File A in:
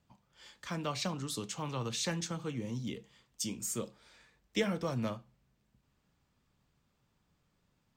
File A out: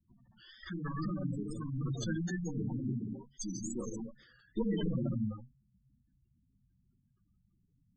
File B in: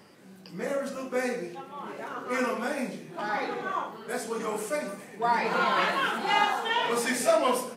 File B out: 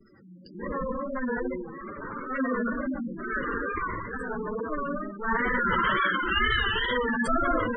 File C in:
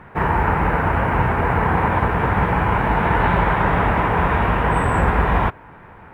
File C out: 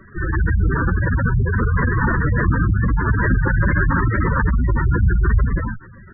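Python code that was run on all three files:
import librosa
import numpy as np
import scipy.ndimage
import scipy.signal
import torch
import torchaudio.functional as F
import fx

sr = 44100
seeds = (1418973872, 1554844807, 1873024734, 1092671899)

y = fx.lower_of_two(x, sr, delay_ms=0.64)
y = fx.rev_gated(y, sr, seeds[0], gate_ms=290, shape='flat', drr_db=-3.5)
y = fx.wow_flutter(y, sr, seeds[1], rate_hz=2.1, depth_cents=94.0)
y = fx.spec_gate(y, sr, threshold_db=-10, keep='strong')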